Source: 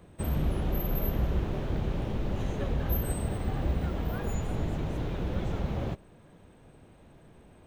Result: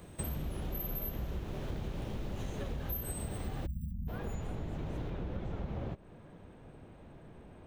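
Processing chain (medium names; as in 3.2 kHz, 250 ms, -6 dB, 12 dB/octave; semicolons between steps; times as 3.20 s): 3.66–4.08 s: spectral selection erased 240–11000 Hz; treble shelf 4.1 kHz +9.5 dB, from 3.91 s -3 dB, from 5.10 s -10.5 dB; compression 6:1, threshold -37 dBFS, peak gain reduction 15 dB; trim +2 dB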